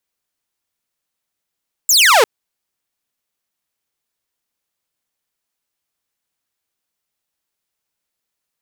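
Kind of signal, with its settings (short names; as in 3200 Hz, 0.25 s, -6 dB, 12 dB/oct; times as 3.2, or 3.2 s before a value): laser zap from 7900 Hz, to 400 Hz, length 0.35 s saw, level -5 dB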